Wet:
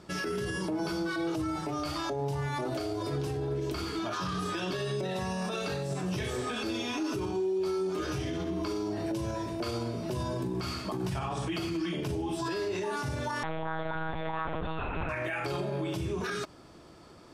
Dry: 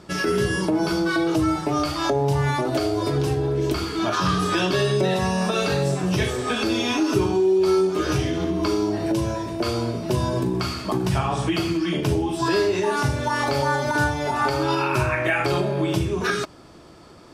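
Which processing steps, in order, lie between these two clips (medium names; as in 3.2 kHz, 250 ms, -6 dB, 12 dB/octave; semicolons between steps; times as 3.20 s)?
peak limiter -19 dBFS, peak gain reduction 10 dB; 13.43–15.09 s: monotone LPC vocoder at 8 kHz 160 Hz; trim -6 dB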